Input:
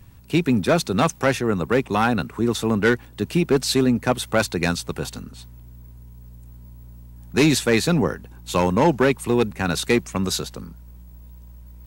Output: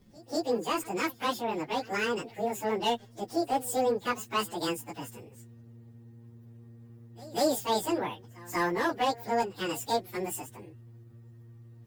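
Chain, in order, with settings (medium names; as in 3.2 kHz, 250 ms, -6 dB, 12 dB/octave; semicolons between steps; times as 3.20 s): frequency-domain pitch shifter +11.5 st; pre-echo 190 ms -22 dB; trim -7 dB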